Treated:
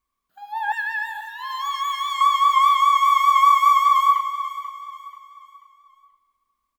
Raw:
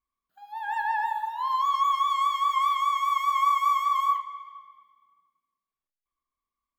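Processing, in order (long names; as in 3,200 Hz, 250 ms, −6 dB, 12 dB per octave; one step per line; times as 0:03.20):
0:00.72–0:02.21: Chebyshev high-pass filter 1,500 Hz, order 3
on a send: repeating echo 486 ms, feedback 38%, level −13 dB
on the sum: level +8 dB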